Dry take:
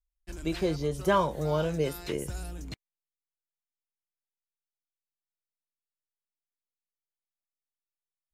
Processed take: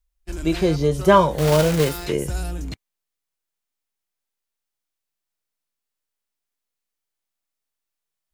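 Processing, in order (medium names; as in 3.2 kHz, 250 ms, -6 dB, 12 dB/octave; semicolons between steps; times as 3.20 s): 1.38–2.06 s: block-companded coder 3-bit; harmonic-percussive split harmonic +6 dB; trim +5.5 dB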